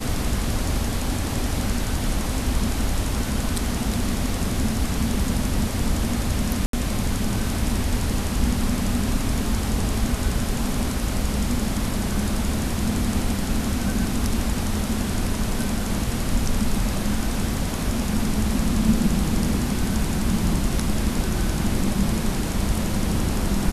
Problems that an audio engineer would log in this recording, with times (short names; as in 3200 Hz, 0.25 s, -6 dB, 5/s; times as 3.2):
6.66–6.73 gap 73 ms